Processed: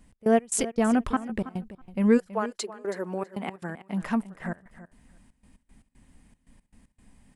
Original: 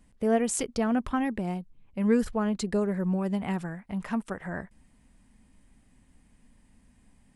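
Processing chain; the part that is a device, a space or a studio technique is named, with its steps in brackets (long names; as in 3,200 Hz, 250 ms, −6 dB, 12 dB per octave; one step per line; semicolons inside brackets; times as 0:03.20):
0:02.17–0:04.01: high-pass filter 530 Hz → 150 Hz 24 dB per octave
trance gate with a delay (gate pattern "x.x.x.xx" 116 BPM −24 dB; repeating echo 325 ms, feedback 16%, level −15 dB)
level +3.5 dB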